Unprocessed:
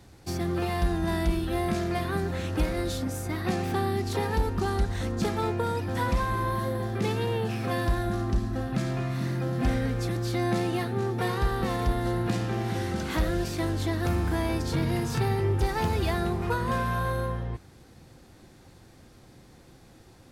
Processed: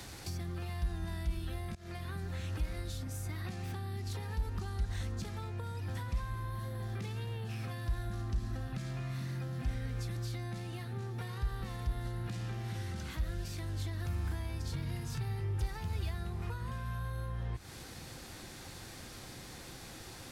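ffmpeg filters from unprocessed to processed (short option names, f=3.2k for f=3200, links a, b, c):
-filter_complex "[0:a]asplit=2[a][b];[a]atrim=end=1.75,asetpts=PTS-STARTPTS,afade=t=out:st=1.746:d=0.004:c=hsin:silence=0.0630957[c];[b]atrim=start=1.75,asetpts=PTS-STARTPTS,afade=t=in:d=0.45:silence=0.0630957[d];[c][d]concat=n=2:v=0:a=1,acompressor=threshold=-40dB:ratio=2,tiltshelf=f=970:g=-5.5,acrossover=split=140[e][f];[f]acompressor=threshold=-54dB:ratio=8[g];[e][g]amix=inputs=2:normalize=0,volume=8.5dB"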